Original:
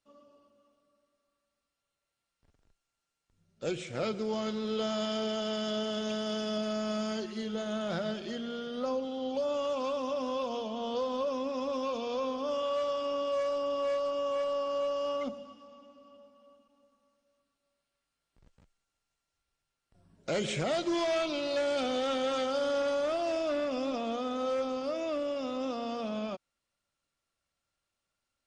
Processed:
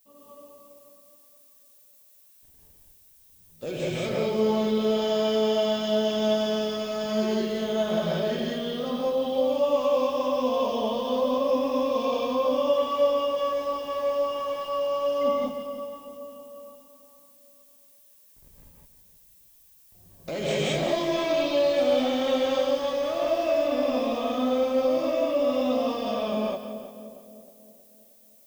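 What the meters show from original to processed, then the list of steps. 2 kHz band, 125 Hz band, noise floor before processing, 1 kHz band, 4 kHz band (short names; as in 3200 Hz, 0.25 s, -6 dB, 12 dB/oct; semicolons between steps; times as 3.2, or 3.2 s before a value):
+4.5 dB, +7.5 dB, under -85 dBFS, +6.5 dB, +5.5 dB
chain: high shelf 6200 Hz -7.5 dB; notch 1400 Hz, Q 5.8; in parallel at -1 dB: negative-ratio compressor -36 dBFS; on the sum: added noise violet -59 dBFS; on a send: split-band echo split 720 Hz, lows 0.315 s, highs 0.176 s, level -10.5 dB; on the sum: non-linear reverb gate 0.23 s rising, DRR -5 dB; gain -4 dB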